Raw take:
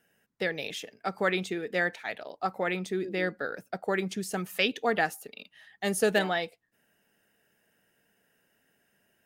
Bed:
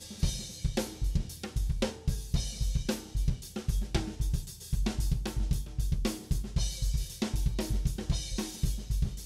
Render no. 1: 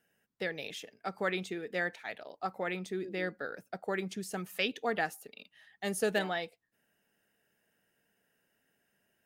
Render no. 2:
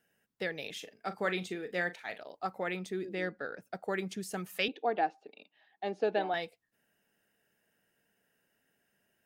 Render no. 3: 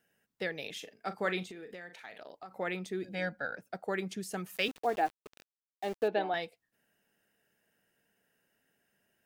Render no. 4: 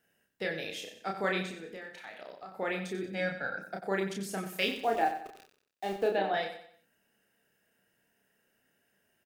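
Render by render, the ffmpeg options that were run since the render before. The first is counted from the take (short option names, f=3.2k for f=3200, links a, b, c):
-af "volume=-5.5dB"
-filter_complex "[0:a]asettb=1/sr,asplit=3[a][b][c];[a]atrim=end=0.724[d];[b]atrim=start=0.72:end=2.18,asetpts=PTS-STARTPTS,afade=t=in:d=0.004:c=qsin,afade=t=out:st=1.456:d=0.004:c=qsin,asplit=2[e][f];[f]adelay=39,volume=-12dB[g];[e][g]amix=inputs=2:normalize=0,atrim=end_sample=64386[h];[c]atrim=start=2.176[i];[d][h]acrossfade=d=0.004:c1=hsin:c2=qsin[j];[j][i]acrossfade=d=0.004:c1=qsin:c2=hsin,asplit=3[k][l][m];[k]afade=t=out:st=3.14:d=0.02[n];[l]adynamicsmooth=sensitivity=5:basefreq=5.8k,afade=t=in:st=3.14:d=0.02,afade=t=out:st=3.61:d=0.02[o];[m]afade=t=in:st=3.61:d=0.02[p];[n][o][p]amix=inputs=3:normalize=0,asettb=1/sr,asplit=3[q][r][s];[q]atrim=end=4.684[t];[r]atrim=start=4.68:end=6.34,asetpts=PTS-STARTPTS,afade=t=in:d=0.004:c=qsin,afade=t=out:st=1.656:d=0.004:c=qsin,highpass=290,equalizer=f=320:t=q:w=4:g=7,equalizer=f=770:t=q:w=4:g=7,equalizer=f=1.3k:t=q:w=4:g=-6,equalizer=f=1.9k:t=q:w=4:g=-9,equalizer=f=3.1k:t=q:w=4:g=-7,lowpass=f=3.6k:w=0.5412,lowpass=f=3.6k:w=1.3066[u];[s]atrim=start=6.336[v];[t][u]acrossfade=d=0.004:c1=hsin:c2=qsin[w];[w][v]acrossfade=d=0.004:c1=qsin:c2=hsin"
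-filter_complex "[0:a]asplit=3[a][b][c];[a]afade=t=out:st=1.43:d=0.02[d];[b]acompressor=threshold=-42dB:ratio=10:attack=3.2:release=140:knee=1:detection=peak,afade=t=in:st=1.43:d=0.02,afade=t=out:st=2.5:d=0.02[e];[c]afade=t=in:st=2.5:d=0.02[f];[d][e][f]amix=inputs=3:normalize=0,asettb=1/sr,asplit=3[g][h][i];[g]atrim=end=3.034[j];[h]atrim=start=3.03:end=3.57,asetpts=PTS-STARTPTS,afade=t=in:d=0.004:c=qsin,afade=t=out:st=0.536:d=0.004:c=qsin,aecho=1:1:1.3:0.86,atrim=end_sample=23814[k];[i]atrim=start=3.566[l];[j][k]acrossfade=d=0.004:c1=hsin:c2=qsin[m];[m][l]acrossfade=d=0.004:c1=qsin:c2=hsin,asettb=1/sr,asplit=3[n][o][p];[n]atrim=end=4.564[q];[o]atrim=start=4.56:end=6.08,asetpts=PTS-STARTPTS,afade=t=in:d=0.004:c=qsin,afade=t=out:st=1.516:d=0.004:c=qsin,aeval=exprs='val(0)*gte(abs(val(0)),0.00668)':c=same[r];[p]atrim=start=6.076[s];[q][r]acrossfade=d=0.004:c1=hsin:c2=qsin[t];[t][s]acrossfade=d=0.004:c1=qsin:c2=hsin"
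-filter_complex "[0:a]asplit=2[a][b];[b]adelay=31,volume=-3dB[c];[a][c]amix=inputs=2:normalize=0,aecho=1:1:92|184|276|368:0.316|0.12|0.0457|0.0174"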